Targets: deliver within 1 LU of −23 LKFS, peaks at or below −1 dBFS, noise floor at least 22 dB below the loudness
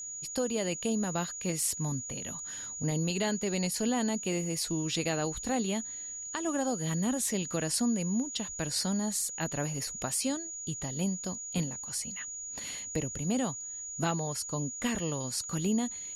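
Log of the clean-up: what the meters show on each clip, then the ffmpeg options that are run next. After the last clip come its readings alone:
interfering tone 6,800 Hz; level of the tone −38 dBFS; integrated loudness −32.0 LKFS; sample peak −17.5 dBFS; target loudness −23.0 LKFS
→ -af "bandreject=frequency=6800:width=30"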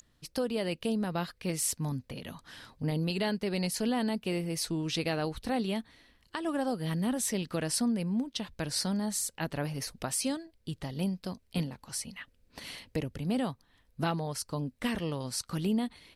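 interfering tone none found; integrated loudness −33.0 LKFS; sample peak −17.5 dBFS; target loudness −23.0 LKFS
→ -af "volume=10dB"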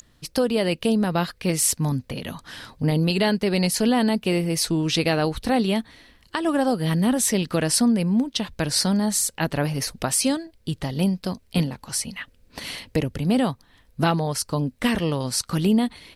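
integrated loudness −23.0 LKFS; sample peak −7.5 dBFS; background noise floor −58 dBFS

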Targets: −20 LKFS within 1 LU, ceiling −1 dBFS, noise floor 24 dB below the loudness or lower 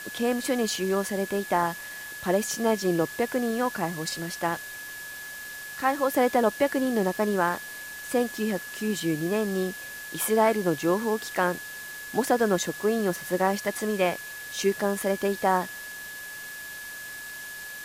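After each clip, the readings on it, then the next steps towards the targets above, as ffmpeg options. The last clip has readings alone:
interfering tone 1,700 Hz; level of the tone −38 dBFS; background noise floor −39 dBFS; target noise floor −52 dBFS; integrated loudness −27.5 LKFS; sample peak −10.5 dBFS; target loudness −20.0 LKFS
→ -af "bandreject=frequency=1700:width=30"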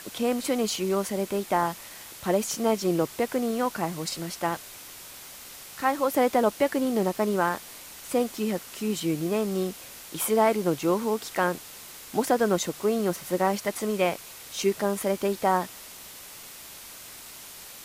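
interfering tone none found; background noise floor −44 dBFS; target noise floor −51 dBFS
→ -af "afftdn=noise_reduction=7:noise_floor=-44"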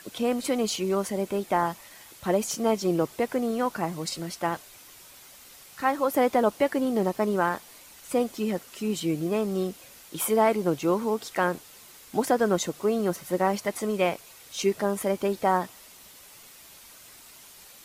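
background noise floor −50 dBFS; target noise floor −51 dBFS
→ -af "afftdn=noise_reduction=6:noise_floor=-50"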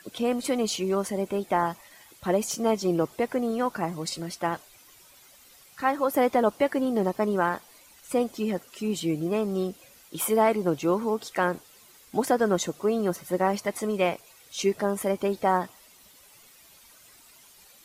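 background noise floor −55 dBFS; integrated loudness −27.0 LKFS; sample peak −11.0 dBFS; target loudness −20.0 LKFS
→ -af "volume=7dB"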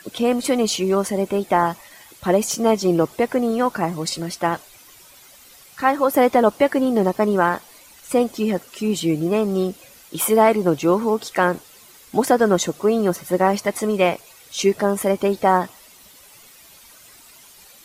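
integrated loudness −20.0 LKFS; sample peak −4.0 dBFS; background noise floor −48 dBFS

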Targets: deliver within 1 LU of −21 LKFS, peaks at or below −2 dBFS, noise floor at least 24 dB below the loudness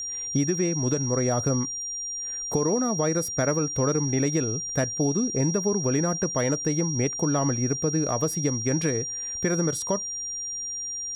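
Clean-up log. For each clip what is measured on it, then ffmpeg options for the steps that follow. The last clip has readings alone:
interfering tone 5,700 Hz; level of the tone −30 dBFS; integrated loudness −25.5 LKFS; sample peak −12.5 dBFS; target loudness −21.0 LKFS
→ -af "bandreject=frequency=5700:width=30"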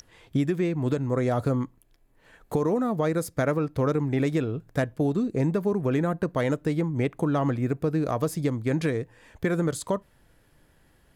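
interfering tone none found; integrated loudness −26.5 LKFS; sample peak −13.5 dBFS; target loudness −21.0 LKFS
→ -af "volume=5.5dB"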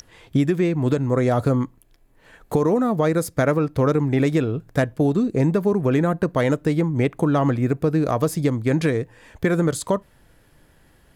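integrated loudness −21.0 LKFS; sample peak −8.0 dBFS; background noise floor −56 dBFS

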